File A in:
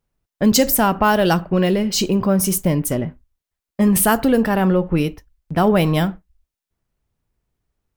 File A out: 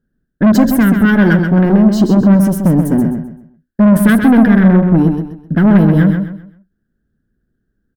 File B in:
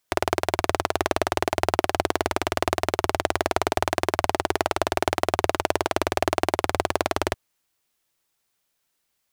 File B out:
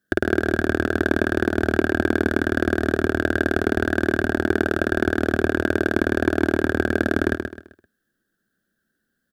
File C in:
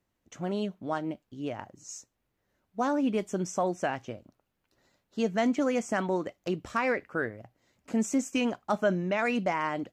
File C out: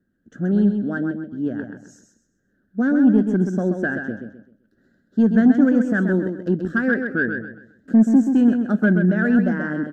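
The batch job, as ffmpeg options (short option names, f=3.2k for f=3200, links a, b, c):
-filter_complex "[0:a]firequalizer=gain_entry='entry(120,0);entry(210,12);entry(310,6);entry(1000,-21);entry(1600,11);entry(2200,-25);entry(3200,-12);entry(6300,-16);entry(11000,-13)':delay=0.05:min_phase=1,asoftclip=type=tanh:threshold=-10.5dB,asplit=2[a][b];[b]aecho=0:1:130|260|390|520:0.473|0.147|0.0455|0.0141[c];[a][c]amix=inputs=2:normalize=0,volume=5dB"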